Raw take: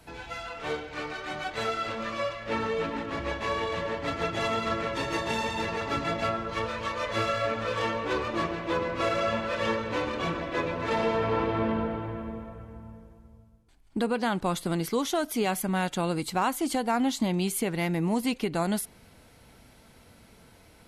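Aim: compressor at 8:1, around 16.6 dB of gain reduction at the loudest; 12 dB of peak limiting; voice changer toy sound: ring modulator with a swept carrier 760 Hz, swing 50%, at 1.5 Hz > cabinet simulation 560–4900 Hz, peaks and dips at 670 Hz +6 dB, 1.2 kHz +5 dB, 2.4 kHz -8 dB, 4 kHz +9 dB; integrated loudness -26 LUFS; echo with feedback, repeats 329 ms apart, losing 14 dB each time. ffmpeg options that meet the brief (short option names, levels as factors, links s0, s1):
-af "acompressor=threshold=0.01:ratio=8,alimiter=level_in=7.08:limit=0.0631:level=0:latency=1,volume=0.141,aecho=1:1:329|658:0.2|0.0399,aeval=exprs='val(0)*sin(2*PI*760*n/s+760*0.5/1.5*sin(2*PI*1.5*n/s))':c=same,highpass=560,equalizer=f=670:t=q:w=4:g=6,equalizer=f=1200:t=q:w=4:g=5,equalizer=f=2400:t=q:w=4:g=-8,equalizer=f=4000:t=q:w=4:g=9,lowpass=f=4900:w=0.5412,lowpass=f=4900:w=1.3066,volume=18.8"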